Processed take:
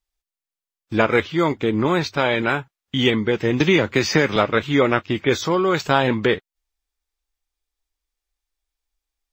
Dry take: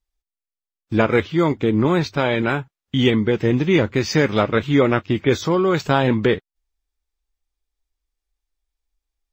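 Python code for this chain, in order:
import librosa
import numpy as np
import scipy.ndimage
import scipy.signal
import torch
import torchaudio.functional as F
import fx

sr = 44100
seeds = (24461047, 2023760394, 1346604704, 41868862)

y = fx.low_shelf(x, sr, hz=410.0, db=-7.5)
y = fx.band_squash(y, sr, depth_pct=100, at=(3.6, 4.36))
y = y * 10.0 ** (2.5 / 20.0)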